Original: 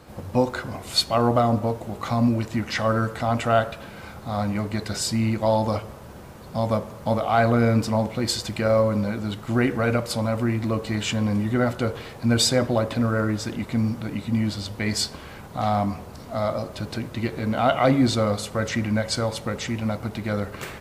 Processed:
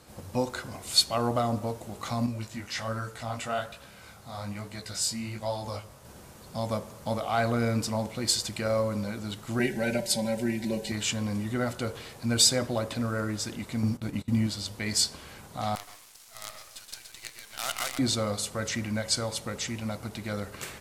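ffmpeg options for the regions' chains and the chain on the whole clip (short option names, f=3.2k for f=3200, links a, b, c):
-filter_complex "[0:a]asettb=1/sr,asplit=3[a][b][c];[a]atrim=end=2.264[d];[b]atrim=start=2.26:end=6.05,asetpts=PTS-STARTPTS,afade=t=in:d=0.004:c=qsin,afade=t=out:st=3.786:d=0.004:c=qsin,flanger=delay=15.5:depth=6.4:speed=1.2,equalizer=f=320:t=o:w=1.4:g=-4[e];[c]atrim=start=6.046[f];[d][e]acrossfade=d=0.004:c1=hsin:c2=qsin[g];[g][f]acrossfade=d=0.004:c1=qsin:c2=hsin,asettb=1/sr,asplit=3[h][i][j];[h]atrim=end=9.594[k];[i]atrim=start=9.59:end=10.92,asetpts=PTS-STARTPTS,afade=t=in:d=0.004:c=qsin,afade=t=out:st=1.326:d=0.004:c=qsin,asuperstop=centerf=1200:order=4:qfactor=2.2,aecho=1:1:5.2:0.89,atrim=end_sample=58653[l];[j]atrim=start=10.916[m];[k][l]acrossfade=d=0.004:c1=hsin:c2=qsin[n];[n][m]acrossfade=d=0.004:c1=qsin:c2=hsin,asettb=1/sr,asplit=3[o][p][q];[o]atrim=end=13.834[r];[p]atrim=start=13.83:end=14.47,asetpts=PTS-STARTPTS,afade=t=in:d=0.004:c=qsin,afade=t=out:st=0.636:d=0.004:c=qsin,lowshelf=f=390:g=6.5,agate=range=-21dB:threshold=-28dB:ratio=16:release=100:detection=peak[s];[q]atrim=start=14.466[t];[r][s]acrossfade=d=0.004:c1=hsin:c2=qsin[u];[u][t]acrossfade=d=0.004:c1=qsin:c2=hsin,asettb=1/sr,asplit=3[v][w][x];[v]atrim=end=15.754[y];[w]atrim=start=15.75:end=17.99,asetpts=PTS-STARTPTS,afade=t=in:d=0.004:c=qsin,afade=t=out:st=2.236:d=0.004:c=qsin,highpass=1.4k,aecho=1:1:123:0.501,atrim=end_sample=98784,acrusher=bits=5:dc=4:mix=0:aa=0.000001[z];[x]atrim=start=17.986[aa];[y][z]acrossfade=d=0.004:c1=hsin:c2=qsin[ab];[ab][aa]acrossfade=d=0.004:c1=qsin:c2=hsin,lowpass=9.2k,aemphasis=mode=production:type=75fm,volume=-7dB"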